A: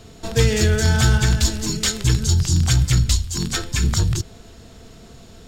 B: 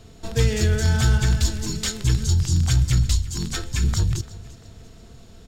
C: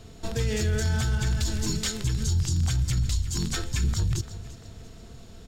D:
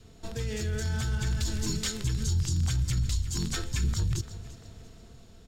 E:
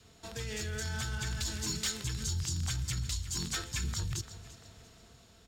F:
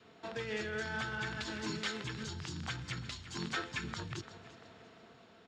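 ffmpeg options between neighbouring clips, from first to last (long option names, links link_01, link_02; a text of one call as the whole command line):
ffmpeg -i in.wav -af "lowshelf=frequency=110:gain=6,aecho=1:1:343|686|1029:0.112|0.0449|0.018,volume=-5.5dB" out.wav
ffmpeg -i in.wav -af "alimiter=limit=-17.5dB:level=0:latency=1:release=69" out.wav
ffmpeg -i in.wav -af "adynamicequalizer=threshold=0.00178:dfrequency=720:dqfactor=3.6:tfrequency=720:tqfactor=3.6:attack=5:release=100:ratio=0.375:range=2:mode=cutabove:tftype=bell,dynaudnorm=framelen=300:gausssize=7:maxgain=4dB,volume=-6.5dB" out.wav
ffmpeg -i in.wav -filter_complex "[0:a]highpass=43,acrossover=split=680[link_01][link_02];[link_02]aeval=exprs='0.106*sin(PI/2*1.58*val(0)/0.106)':channel_layout=same[link_03];[link_01][link_03]amix=inputs=2:normalize=0,volume=-7.5dB" out.wav
ffmpeg -i in.wav -af "highpass=220,lowpass=2500,volume=4.5dB" out.wav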